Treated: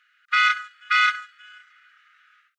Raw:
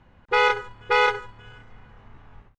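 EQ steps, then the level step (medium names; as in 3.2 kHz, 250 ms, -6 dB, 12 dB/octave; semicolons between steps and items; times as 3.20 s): brick-wall FIR high-pass 1.2 kHz; +3.5 dB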